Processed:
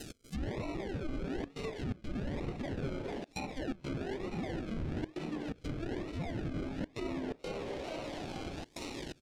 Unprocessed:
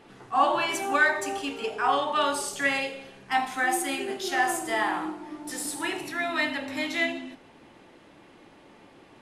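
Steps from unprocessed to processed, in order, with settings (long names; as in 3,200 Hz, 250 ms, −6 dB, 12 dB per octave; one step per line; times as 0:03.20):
Butterworth high-pass 250 Hz 48 dB per octave
brickwall limiter −21 dBFS, peak gain reduction 11.5 dB
sample-and-hold swept by an LFO 38×, swing 60% 1.1 Hz
parametric band 890 Hz −12.5 dB 2.1 octaves
on a send: echo with shifted repeats 447 ms, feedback 45%, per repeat +140 Hz, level −14 dB
on the sum: gate pattern "x.xxxxxxxxxx.xx" 125 BPM −24 dB
reversed playback
downward compressor 6 to 1, threshold −52 dBFS, peak gain reduction 23 dB
reversed playback
treble cut that deepens with the level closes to 1,600 Hz, closed at −50 dBFS
high-shelf EQ 3,400 Hz +10 dB
level +16 dB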